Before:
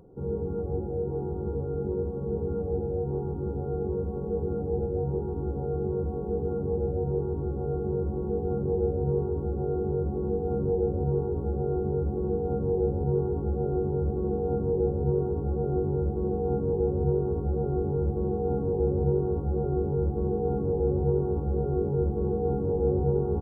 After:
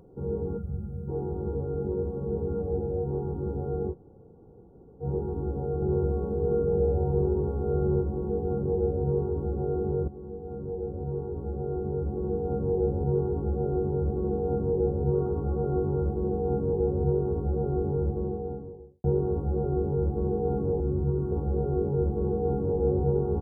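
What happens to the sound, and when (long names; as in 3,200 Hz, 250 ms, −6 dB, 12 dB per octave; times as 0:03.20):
0:00.57–0:01.08: gain on a spectral selection 250–1,200 Hz −17 dB
0:03.92–0:05.03: fill with room tone, crossfade 0.06 s
0:05.75–0:08.02: repeating echo 70 ms, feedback 60%, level −3 dB
0:10.08–0:12.79: fade in, from −13 dB
0:15.13–0:16.14: parametric band 1,200 Hz +8 dB 0.54 octaves
0:17.88–0:19.04: fade out and dull
0:20.80–0:21.32: flat-topped bell 600 Hz −9.5 dB 1.2 octaves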